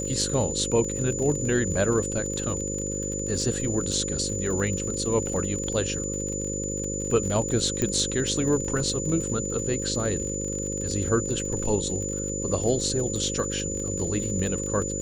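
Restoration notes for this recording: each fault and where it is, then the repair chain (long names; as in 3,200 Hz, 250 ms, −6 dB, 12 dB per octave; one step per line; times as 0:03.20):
mains buzz 50 Hz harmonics 11 −32 dBFS
surface crackle 44 per second −31 dBFS
whistle 7,000 Hz −31 dBFS
0:07.82: click −12 dBFS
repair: click removal
hum removal 50 Hz, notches 11
notch filter 7,000 Hz, Q 30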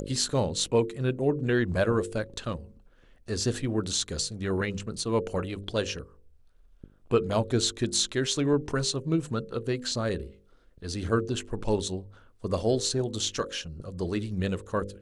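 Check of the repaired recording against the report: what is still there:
none of them is left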